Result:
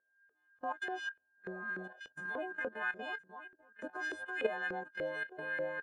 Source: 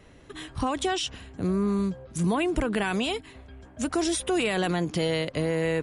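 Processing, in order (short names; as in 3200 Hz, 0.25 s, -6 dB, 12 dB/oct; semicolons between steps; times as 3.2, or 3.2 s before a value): frequency quantiser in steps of 3 st; 1.01–1.61 bell 2000 Hz -13.5 dB 0.22 oct; whine 1600 Hz -26 dBFS; gate -22 dBFS, range -36 dB; high shelf 2900 Hz -11.5 dB; echo 1.017 s -19.5 dB; level quantiser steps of 12 dB; 1.56–1.97 spectral repair 410–870 Hz before; LFO band-pass saw up 3.4 Hz 470–2100 Hz; gain +5.5 dB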